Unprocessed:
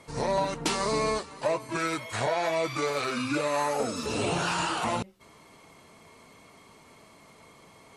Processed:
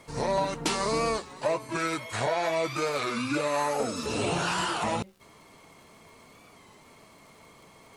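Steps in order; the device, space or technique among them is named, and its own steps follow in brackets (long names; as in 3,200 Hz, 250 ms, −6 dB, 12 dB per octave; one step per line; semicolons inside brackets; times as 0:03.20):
warped LP (wow of a warped record 33 1/3 rpm, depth 100 cents; surface crackle 77 per second −49 dBFS; pink noise bed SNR 40 dB)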